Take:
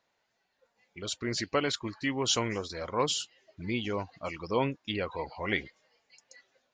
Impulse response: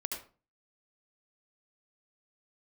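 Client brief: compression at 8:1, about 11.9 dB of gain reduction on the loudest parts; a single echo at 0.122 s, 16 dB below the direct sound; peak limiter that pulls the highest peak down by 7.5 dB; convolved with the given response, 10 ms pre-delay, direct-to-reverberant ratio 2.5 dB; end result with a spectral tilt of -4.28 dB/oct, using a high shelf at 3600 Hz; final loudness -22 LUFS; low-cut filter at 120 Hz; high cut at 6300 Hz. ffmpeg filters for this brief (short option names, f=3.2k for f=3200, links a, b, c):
-filter_complex "[0:a]highpass=120,lowpass=6.3k,highshelf=f=3.6k:g=-6.5,acompressor=threshold=-35dB:ratio=8,alimiter=level_in=5.5dB:limit=-24dB:level=0:latency=1,volume=-5.5dB,aecho=1:1:122:0.158,asplit=2[a][b];[1:a]atrim=start_sample=2205,adelay=10[c];[b][c]afir=irnorm=-1:irlink=0,volume=-4dB[d];[a][d]amix=inputs=2:normalize=0,volume=18.5dB"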